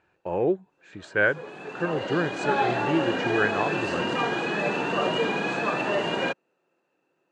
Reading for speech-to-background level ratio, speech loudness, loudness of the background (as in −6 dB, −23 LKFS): −1.5 dB, −28.0 LKFS, −26.5 LKFS